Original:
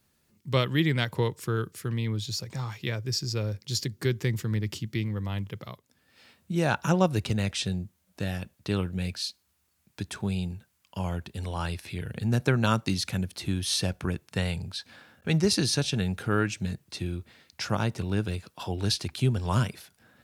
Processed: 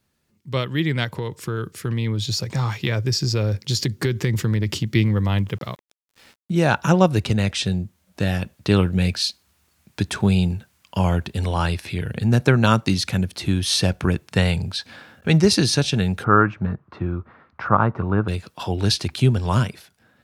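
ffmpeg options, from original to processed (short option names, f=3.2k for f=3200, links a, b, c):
-filter_complex "[0:a]asettb=1/sr,asplit=3[a][b][c];[a]atrim=end=1.104[d];[b]atrim=start=1.1:end=4.89,asetpts=PTS-STARTPTS,afade=t=in:d=0.004:c=qsin,afade=t=out:st=3.786:d=0.004:c=qsin,acompressor=threshold=-28dB:ratio=6:attack=3.2:release=140:knee=1:detection=peak[e];[c]atrim=start=4.886[f];[d][e]acrossfade=d=0.004:c1=hsin:c2=qsin[g];[g][f]acrossfade=d=0.004:c1=qsin:c2=hsin,asettb=1/sr,asplit=3[h][i][j];[h]atrim=end=5.484[k];[i]atrim=start=5.48:end=6.59,asetpts=PTS-STARTPTS,afade=t=in:d=0.004:c=qsin,afade=t=out:st=1.106:d=0.004:c=qsin,aeval=exprs='val(0)*gte(abs(val(0)),0.002)':c=same[l];[j]atrim=start=6.586[m];[k][l]acrossfade=d=0.004:c1=hsin:c2=qsin[n];[n][m]acrossfade=d=0.004:c1=qsin:c2=hsin,asplit=3[o][p][q];[o]afade=t=out:st=16.23:d=0.02[r];[p]lowpass=f=1.2k:t=q:w=3.9,afade=t=in:st=16.23:d=0.02,afade=t=out:st=18.27:d=0.02[s];[q]afade=t=in:st=18.27:d=0.02[t];[r][s][t]amix=inputs=3:normalize=0,highshelf=f=7.2k:g=-6,dynaudnorm=f=240:g=9:m=12dB"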